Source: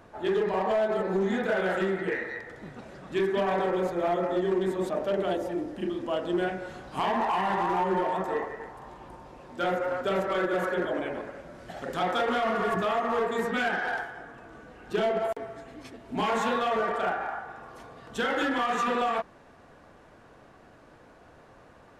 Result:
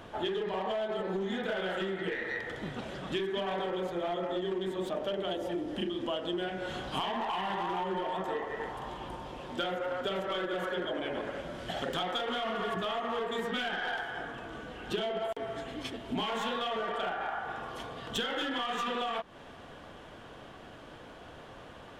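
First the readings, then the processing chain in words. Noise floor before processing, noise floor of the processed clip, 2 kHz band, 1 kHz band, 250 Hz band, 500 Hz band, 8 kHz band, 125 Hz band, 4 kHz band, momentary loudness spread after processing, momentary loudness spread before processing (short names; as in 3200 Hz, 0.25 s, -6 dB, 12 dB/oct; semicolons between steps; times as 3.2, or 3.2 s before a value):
-54 dBFS, -50 dBFS, -5.0 dB, -6.0 dB, -5.5 dB, -6.0 dB, -3.0 dB, -4.5 dB, +3.5 dB, 16 LU, 18 LU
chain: tracing distortion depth 0.036 ms; bell 3200 Hz +12 dB 0.38 oct; compressor 12:1, threshold -35 dBFS, peak gain reduction 14 dB; gain +4.5 dB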